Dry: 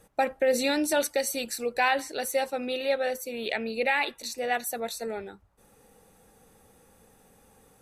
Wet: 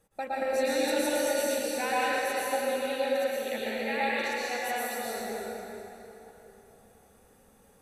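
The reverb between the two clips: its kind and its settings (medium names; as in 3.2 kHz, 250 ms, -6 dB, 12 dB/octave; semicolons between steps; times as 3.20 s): plate-style reverb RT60 3.5 s, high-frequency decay 0.7×, pre-delay 100 ms, DRR -8.5 dB; trim -10.5 dB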